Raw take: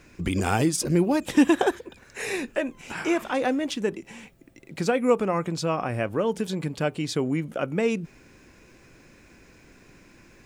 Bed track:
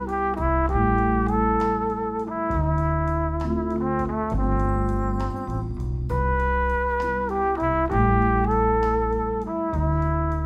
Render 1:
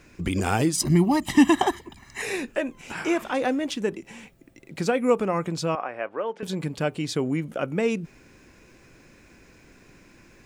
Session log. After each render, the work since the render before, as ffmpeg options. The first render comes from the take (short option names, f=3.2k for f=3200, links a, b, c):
-filter_complex "[0:a]asettb=1/sr,asplit=3[a][b][c];[a]atrim=end=0.764[d];[b]atrim=start=0.76:end=2.22,asetpts=PTS-STARTPTS,afade=t=in:d=0.004:c=qsin,afade=t=out:st=1.456:d=0.004:c=qsin,aecho=1:1:1:1,atrim=end_sample=64386[e];[c]atrim=start=2.216[f];[d][e]acrossfade=d=0.004:c1=hsin:c2=qsin[g];[g][f]acrossfade=d=0.004:c1=qsin:c2=hsin,asettb=1/sr,asplit=3[h][i][j];[h]atrim=end=5.754[k];[i]atrim=start=5.75:end=6.43,asetpts=PTS-STARTPTS,afade=t=in:d=0.004:c=qsin,afade=t=out:st=0.676:d=0.004:c=qsin,highpass=540,lowpass=2.2k[l];[j]atrim=start=6.426[m];[k][l]acrossfade=d=0.004:c1=hsin:c2=qsin[n];[n][m]acrossfade=d=0.004:c1=qsin:c2=hsin"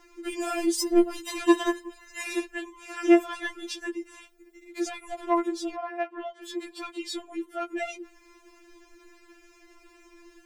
-af "asoftclip=type=tanh:threshold=-16dB,afftfilt=real='re*4*eq(mod(b,16),0)':imag='im*4*eq(mod(b,16),0)':win_size=2048:overlap=0.75"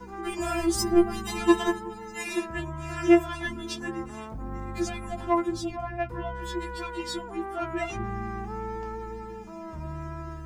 -filter_complex "[1:a]volume=-14dB[a];[0:a][a]amix=inputs=2:normalize=0"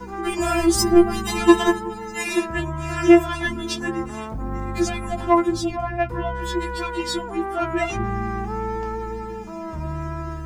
-af "volume=7.5dB,alimiter=limit=-3dB:level=0:latency=1"